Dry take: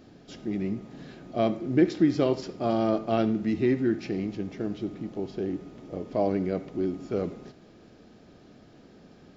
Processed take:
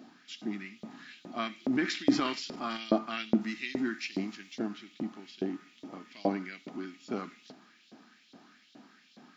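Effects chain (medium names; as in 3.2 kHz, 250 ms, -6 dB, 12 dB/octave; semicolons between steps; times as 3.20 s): resonant low shelf 350 Hz +13.5 dB, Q 3; LFO high-pass saw up 2.4 Hz 580–3900 Hz; 1.55–2.77 s: transient shaper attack 0 dB, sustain +7 dB; 3.41–4.59 s: tone controls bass -2 dB, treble +6 dB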